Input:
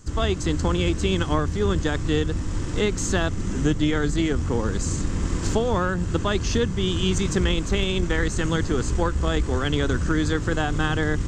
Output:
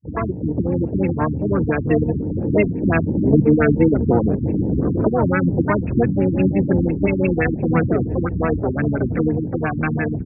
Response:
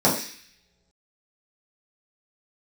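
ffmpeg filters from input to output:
-filter_complex "[0:a]atempo=1.1,acrossover=split=230|3000[a][b][c];[b]acompressor=threshold=-32dB:ratio=2[d];[a][d][c]amix=inputs=3:normalize=0,afftfilt=real='re*gte(hypot(re,im),0.0398)':imag='im*gte(hypot(re,im),0.0398)':win_size=1024:overlap=0.75,crystalizer=i=4:c=0,asplit=2[e][f];[f]asetrate=66075,aresample=44100,atempo=0.66742,volume=-5dB[g];[e][g]amix=inputs=2:normalize=0,highpass=140,dynaudnorm=f=360:g=11:m=14dB,aecho=1:1:663:0.106,afwtdn=0.0251,adynamicequalizer=threshold=0.0141:dfrequency=5300:dqfactor=2.8:tfrequency=5300:tqfactor=2.8:attack=5:release=100:ratio=0.375:range=2.5:mode=cutabove:tftype=bell,alimiter=level_in=6dB:limit=-1dB:release=50:level=0:latency=1,afftfilt=real='re*lt(b*sr/1024,330*pow(2800/330,0.5+0.5*sin(2*PI*5.8*pts/sr)))':imag='im*lt(b*sr/1024,330*pow(2800/330,0.5+0.5*sin(2*PI*5.8*pts/sr)))':win_size=1024:overlap=0.75"

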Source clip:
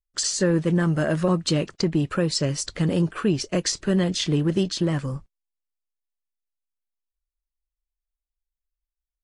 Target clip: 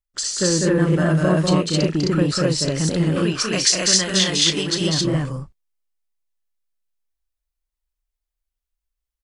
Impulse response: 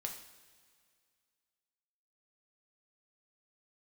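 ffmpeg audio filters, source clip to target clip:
-filter_complex "[0:a]asettb=1/sr,asplit=3[a][b][c];[a]atrim=end=3.244[d];[b]atrim=start=3.24:end=4.75,asetpts=PTS-STARTPTS,afade=t=in:d=0.004:c=qsin,afade=t=out:st=1.506:d=0.004:c=qsin,tiltshelf=f=770:g=-8.5[e];[c]atrim=start=4.746[f];[d][e]acrossfade=d=0.004:c1=hsin:c2=qsin[g];[g][f]acrossfade=d=0.004:c1=qsin:c2=hsin,asplit=2[h][i];[i]aecho=0:1:37.9|198.3|230.3|262.4:0.251|0.708|0.501|1[j];[h][j]amix=inputs=2:normalize=0"

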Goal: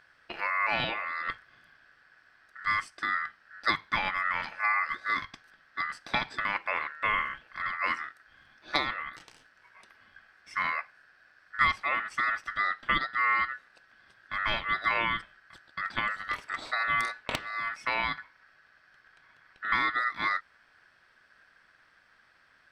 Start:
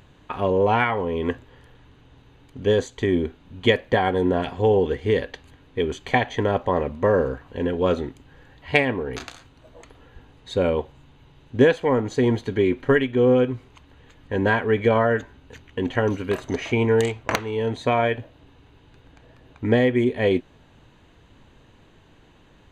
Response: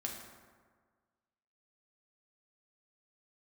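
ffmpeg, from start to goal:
-filter_complex "[0:a]asettb=1/sr,asplit=3[a][b][c];[a]atrim=end=9.094[d];[b]atrim=start=9.09:end=10.54,asetpts=PTS-STARTPTS,afade=t=in:d=0.004:c=qsin,afade=t=out:st=1.446:d=0.004:c=qsin,acompressor=threshold=-38dB:ratio=2.5[e];[c]atrim=start=10.536[f];[d][e]acrossfade=d=0.004:c1=hsin:c2=qsin[g];[g][f]acrossfade=d=0.004:c1=qsin:c2=hsin,aeval=exprs='val(0)*sin(2*PI*1600*n/s)':c=same,volume=-6.5dB"

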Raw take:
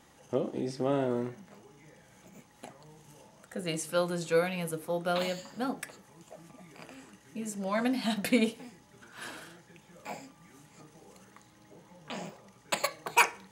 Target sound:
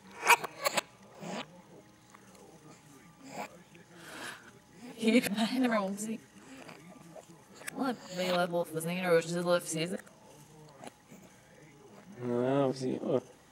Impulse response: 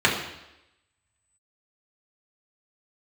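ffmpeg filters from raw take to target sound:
-filter_complex "[0:a]areverse,asplit=2[a][b];[1:a]atrim=start_sample=2205,adelay=23[c];[b][c]afir=irnorm=-1:irlink=0,volume=-41dB[d];[a][d]amix=inputs=2:normalize=0"

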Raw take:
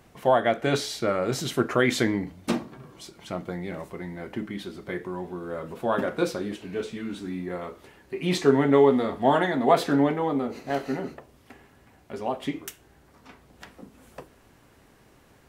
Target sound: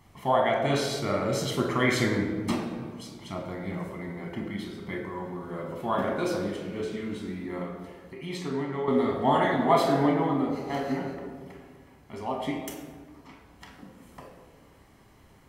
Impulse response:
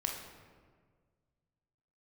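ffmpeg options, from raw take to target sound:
-filter_complex "[0:a]asettb=1/sr,asplit=3[a][b][c];[a]atrim=end=7.624[d];[b]atrim=start=7.62:end=8.88,asetpts=PTS-STARTPTS,afade=t=in:d=0.004:c=qsin,afade=t=out:st=1.256:d=0.004:c=qsin,acompressor=threshold=-44dB:ratio=1.5[e];[c]atrim=start=8.876[f];[d][e]acrossfade=d=0.004:c1=hsin:c2=qsin[g];[g][f]acrossfade=d=0.004:c1=qsin:c2=hsin[h];[1:a]atrim=start_sample=2205[i];[h][i]afir=irnorm=-1:irlink=0,volume=-3.5dB"

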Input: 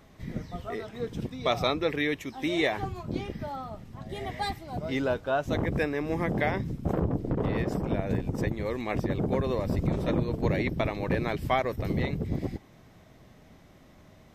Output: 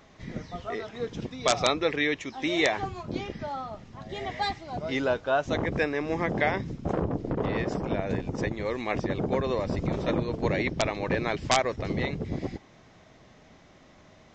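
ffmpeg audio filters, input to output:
-af "lowshelf=f=290:g=-7.5,aresample=16000,aeval=exprs='(mod(5.62*val(0)+1,2)-1)/5.62':c=same,aresample=44100,volume=3.5dB"

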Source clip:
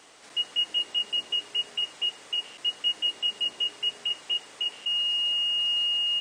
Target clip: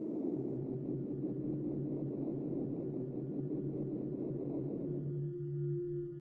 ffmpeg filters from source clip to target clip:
-af "aeval=exprs='val(0)+0.5*0.0251*sgn(val(0))':c=same,acompressor=threshold=-28dB:ratio=12,aresample=11025,asoftclip=type=tanh:threshold=-36.5dB,aresample=44100,acrusher=samples=14:mix=1:aa=0.000001,bandpass=f=600:t=q:w=3.9:csg=0,afftdn=nr=12:nf=-56,asetrate=22050,aresample=44100,atempo=2,aecho=1:1:140|252|341.6|413.3|470.6:0.631|0.398|0.251|0.158|0.1,volume=11dB" -ar 48000 -c:a libopus -b:a 20k

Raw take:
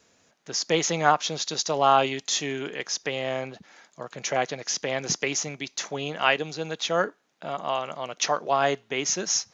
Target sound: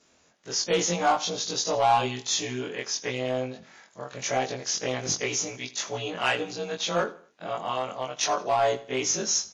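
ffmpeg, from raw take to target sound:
-filter_complex "[0:a]afftfilt=real='re':imag='-im':win_size=2048:overlap=0.75,adynamicequalizer=threshold=0.00501:dfrequency=2000:dqfactor=1.4:tfrequency=2000:tqfactor=1.4:attack=5:release=100:ratio=0.375:range=4:mode=cutabove:tftype=bell,asplit=2[a][b];[b]aeval=exprs='0.0596*(abs(mod(val(0)/0.0596+3,4)-2)-1)':c=same,volume=-8.5dB[c];[a][c]amix=inputs=2:normalize=0,aecho=1:1:82|164|246:0.126|0.0478|0.0182,volume=2dB" -ar 24000 -c:a libmp3lame -b:a 40k

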